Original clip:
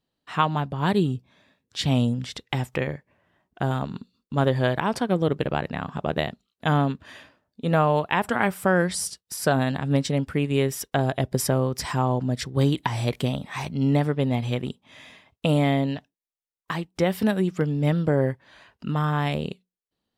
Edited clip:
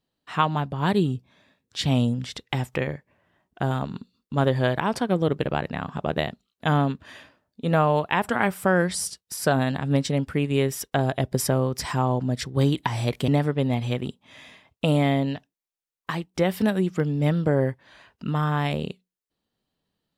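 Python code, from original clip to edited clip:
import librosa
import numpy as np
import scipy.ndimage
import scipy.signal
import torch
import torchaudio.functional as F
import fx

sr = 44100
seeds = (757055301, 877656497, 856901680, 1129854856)

y = fx.edit(x, sr, fx.cut(start_s=13.28, length_s=0.61), tone=tone)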